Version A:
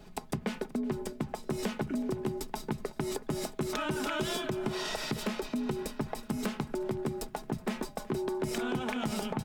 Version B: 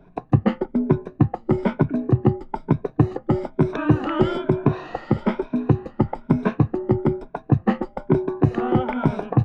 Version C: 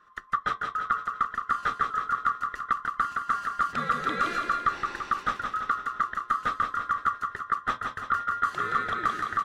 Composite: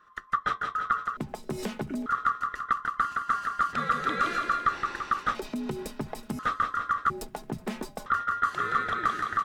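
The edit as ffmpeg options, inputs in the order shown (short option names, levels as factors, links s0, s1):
-filter_complex "[0:a]asplit=3[s0][s1][s2];[2:a]asplit=4[s3][s4][s5][s6];[s3]atrim=end=1.172[s7];[s0]atrim=start=1.168:end=2.062[s8];[s4]atrim=start=2.058:end=5.352[s9];[s1]atrim=start=5.348:end=6.392[s10];[s5]atrim=start=6.388:end=7.102[s11];[s2]atrim=start=7.098:end=8.062[s12];[s6]atrim=start=8.058[s13];[s7][s8]acrossfade=d=0.004:c1=hsin:c2=hsin[s14];[s14][s9]acrossfade=d=0.004:c1=hsin:c2=hsin[s15];[s15][s10]acrossfade=d=0.004:c1=hsin:c2=hsin[s16];[s16][s11]acrossfade=d=0.004:c1=hsin:c2=hsin[s17];[s17][s12]acrossfade=d=0.004:c1=hsin:c2=hsin[s18];[s18][s13]acrossfade=d=0.004:c1=hsin:c2=hsin"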